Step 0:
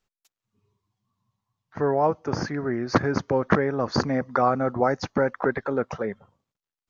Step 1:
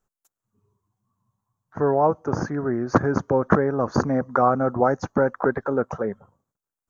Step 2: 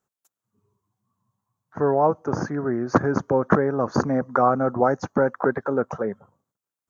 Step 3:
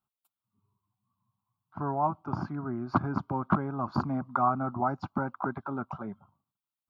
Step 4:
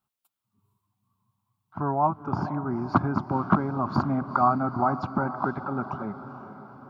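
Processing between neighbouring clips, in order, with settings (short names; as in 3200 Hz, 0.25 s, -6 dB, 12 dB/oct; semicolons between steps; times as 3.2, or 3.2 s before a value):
band shelf 3200 Hz -13 dB; gain +2.5 dB
HPF 100 Hz
fixed phaser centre 1800 Hz, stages 6; gain -4 dB
diffused feedback echo 0.465 s, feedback 54%, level -12 dB; gain +4.5 dB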